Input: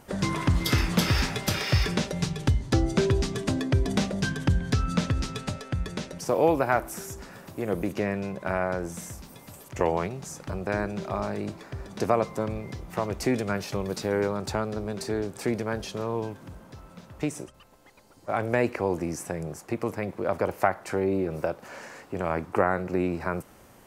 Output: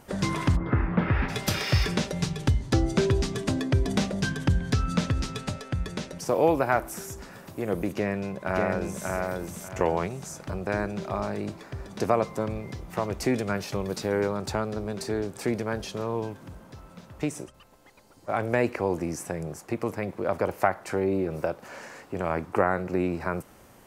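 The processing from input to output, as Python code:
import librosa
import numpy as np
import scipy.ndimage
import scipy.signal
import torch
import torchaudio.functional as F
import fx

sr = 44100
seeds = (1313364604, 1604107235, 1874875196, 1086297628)

y = fx.lowpass(x, sr, hz=fx.line((0.55, 1400.0), (1.28, 2400.0)), slope=24, at=(0.55, 1.28), fade=0.02)
y = fx.echo_throw(y, sr, start_s=7.95, length_s=1.14, ms=590, feedback_pct=25, wet_db=-2.5)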